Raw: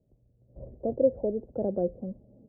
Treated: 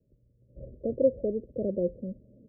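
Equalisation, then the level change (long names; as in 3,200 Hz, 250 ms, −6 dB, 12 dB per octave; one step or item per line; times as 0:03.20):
Butterworth low-pass 610 Hz 72 dB per octave
0.0 dB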